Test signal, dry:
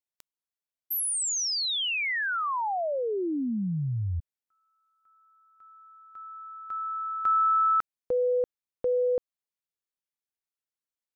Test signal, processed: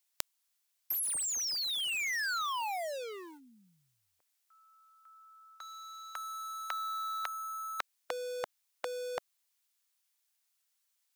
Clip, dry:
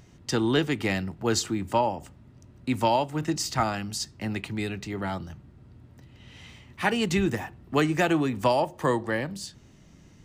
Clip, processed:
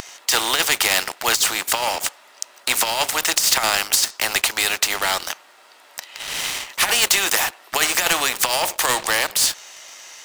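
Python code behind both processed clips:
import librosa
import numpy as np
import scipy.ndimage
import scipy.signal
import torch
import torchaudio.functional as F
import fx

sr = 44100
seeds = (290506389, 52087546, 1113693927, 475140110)

y = scipy.signal.sosfilt(scipy.signal.butter(4, 650.0, 'highpass', fs=sr, output='sos'), x)
y = fx.high_shelf(y, sr, hz=2300.0, db=9.5)
y = fx.over_compress(y, sr, threshold_db=-26.0, ratio=-0.5)
y = fx.leveller(y, sr, passes=2)
y = fx.spectral_comp(y, sr, ratio=2.0)
y = y * librosa.db_to_amplitude(6.5)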